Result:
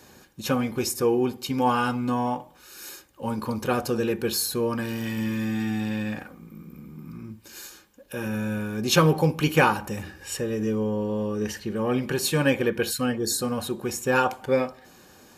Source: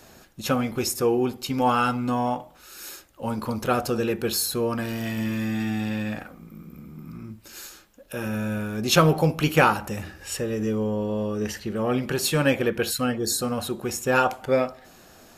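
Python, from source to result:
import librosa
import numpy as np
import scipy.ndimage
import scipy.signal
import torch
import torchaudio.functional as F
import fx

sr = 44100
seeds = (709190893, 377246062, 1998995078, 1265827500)

y = fx.notch_comb(x, sr, f0_hz=670.0)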